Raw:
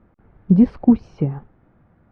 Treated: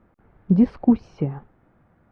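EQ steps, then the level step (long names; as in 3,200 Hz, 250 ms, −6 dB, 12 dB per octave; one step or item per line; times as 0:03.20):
low-shelf EQ 330 Hz −5 dB
0.0 dB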